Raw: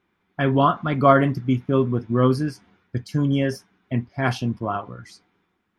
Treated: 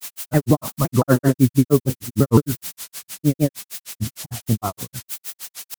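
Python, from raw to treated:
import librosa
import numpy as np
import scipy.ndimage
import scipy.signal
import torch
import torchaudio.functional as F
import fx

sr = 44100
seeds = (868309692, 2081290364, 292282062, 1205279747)

y = scipy.signal.sosfilt(scipy.signal.butter(2, 1200.0, 'lowpass', fs=sr, output='sos'), x)
y = fx.low_shelf(y, sr, hz=110.0, db=9.5)
y = fx.dmg_noise_colour(y, sr, seeds[0], colour='blue', level_db=-31.0)
y = fx.granulator(y, sr, seeds[1], grain_ms=111.0, per_s=6.5, spray_ms=100.0, spread_st=0)
y = fx.vibrato_shape(y, sr, shape='saw_down', rate_hz=5.9, depth_cents=250.0)
y = y * librosa.db_to_amplitude(5.0)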